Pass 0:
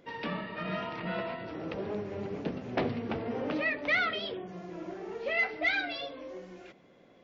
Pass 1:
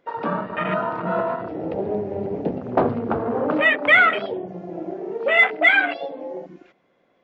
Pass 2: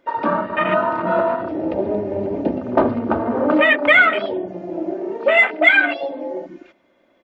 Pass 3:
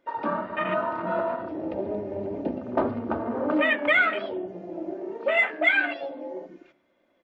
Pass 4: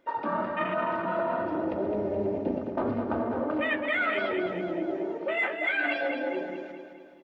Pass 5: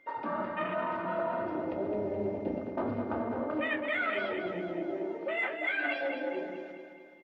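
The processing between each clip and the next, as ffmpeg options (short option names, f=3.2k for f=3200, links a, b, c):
-af "afwtdn=0.0158,equalizer=f=1.2k:t=o:w=2.8:g=8,volume=7.5dB"
-filter_complex "[0:a]aecho=1:1:3.3:0.55,asplit=2[a][b];[b]alimiter=limit=-9dB:level=0:latency=1:release=377,volume=1dB[c];[a][c]amix=inputs=2:normalize=0,volume=-3dB"
-af "flanger=delay=9.5:depth=4.3:regen=88:speed=1.7:shape=sinusoidal,volume=-4dB"
-af "areverse,acompressor=threshold=-31dB:ratio=6,areverse,aecho=1:1:212|424|636|848|1060|1272:0.447|0.228|0.116|0.0593|0.0302|0.0154,volume=4.5dB"
-filter_complex "[0:a]flanger=delay=6.9:depth=4.2:regen=-70:speed=0.52:shape=sinusoidal,aeval=exprs='val(0)+0.001*sin(2*PI*2100*n/s)':c=same,asplit=2[a][b];[b]adelay=29,volume=-13.5dB[c];[a][c]amix=inputs=2:normalize=0"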